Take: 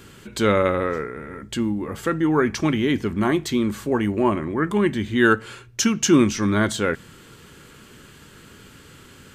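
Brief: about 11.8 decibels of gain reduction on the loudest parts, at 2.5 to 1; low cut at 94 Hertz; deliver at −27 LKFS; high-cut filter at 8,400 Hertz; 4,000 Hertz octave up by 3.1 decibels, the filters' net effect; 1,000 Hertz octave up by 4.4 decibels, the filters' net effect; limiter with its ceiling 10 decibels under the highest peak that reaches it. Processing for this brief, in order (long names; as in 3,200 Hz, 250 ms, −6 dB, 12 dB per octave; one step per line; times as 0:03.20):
high-pass filter 94 Hz
low-pass filter 8,400 Hz
parametric band 1,000 Hz +5.5 dB
parametric band 4,000 Hz +4 dB
downward compressor 2.5 to 1, threshold −28 dBFS
level +6 dB
brickwall limiter −16.5 dBFS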